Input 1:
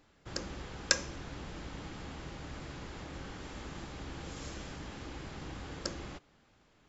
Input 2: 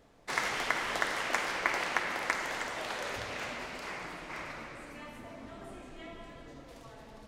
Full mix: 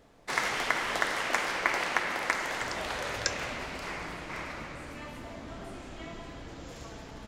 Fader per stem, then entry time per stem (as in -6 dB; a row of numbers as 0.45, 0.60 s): -3.5, +2.5 dB; 2.35, 0.00 s